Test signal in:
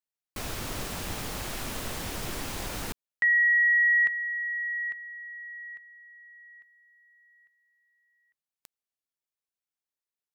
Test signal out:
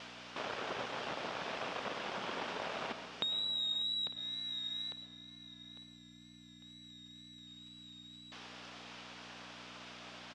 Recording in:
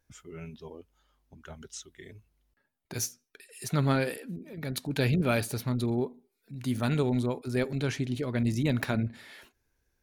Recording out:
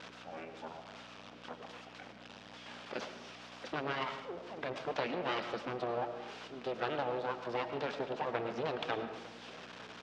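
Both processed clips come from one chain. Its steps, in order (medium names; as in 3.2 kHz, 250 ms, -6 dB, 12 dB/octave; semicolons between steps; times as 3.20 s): zero-crossing glitches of -32 dBFS; reverb removal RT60 0.51 s; treble shelf 2.7 kHz -7 dB; compression, threshold -30 dBFS; full-wave rectifier; vibrato 2.1 Hz 39 cents; on a send: delay 903 ms -20 dB; on the sum: algorithmic reverb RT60 0.94 s, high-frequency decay 0.5×, pre-delay 65 ms, DRR 8 dB; hum 60 Hz, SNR 23 dB; cabinet simulation 330–4400 Hz, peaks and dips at 330 Hz -6 dB, 2 kHz -4 dB, 4.2 kHz -5 dB; trim +6 dB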